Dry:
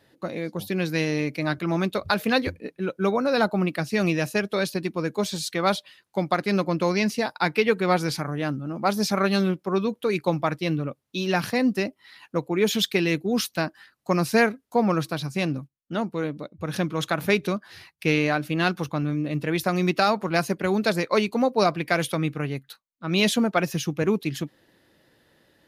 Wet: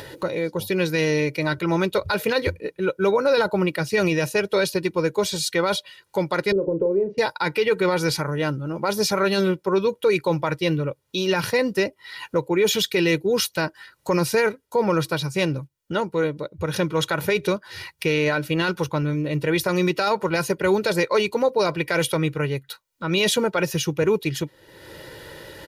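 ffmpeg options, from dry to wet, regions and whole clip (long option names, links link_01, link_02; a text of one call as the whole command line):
ffmpeg -i in.wav -filter_complex "[0:a]asettb=1/sr,asplit=3[link_01][link_02][link_03];[link_01]atrim=end=6.524[link_04];[link_02]atrim=start=6.52:end=7.18,asetpts=PTS-STARTPTS,afade=type=in:duration=0.004:curve=qsin,afade=type=out:start_time=0.656:duration=0.004:curve=qsin,acompressor=threshold=-29dB:ratio=6:attack=3.2:release=140:knee=1:detection=peak,lowpass=frequency=450:width_type=q:width=4.4,asplit=2[link_05][link_06];[link_06]adelay=36,volume=-9.5dB[link_07];[link_05][link_07]amix=inputs=2:normalize=0,atrim=end_sample=29106[link_08];[link_03]atrim=start=7.176[link_09];[link_04][link_08]acrossfade=duration=0.004:curve1=hsin:curve2=qsin[link_10];[link_10][link_09]acrossfade=duration=0.004:curve1=qsin:curve2=hsin,aecho=1:1:2.1:0.66,acompressor=mode=upward:threshold=-29dB:ratio=2.5,alimiter=limit=-15dB:level=0:latency=1:release=16,volume=3.5dB" out.wav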